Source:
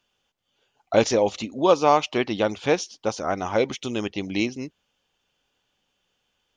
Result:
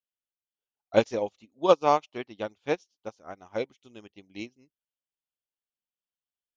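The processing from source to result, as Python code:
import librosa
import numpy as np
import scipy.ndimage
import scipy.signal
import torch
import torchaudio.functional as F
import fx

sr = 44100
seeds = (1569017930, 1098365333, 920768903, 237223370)

y = fx.upward_expand(x, sr, threshold_db=-33.0, expansion=2.5)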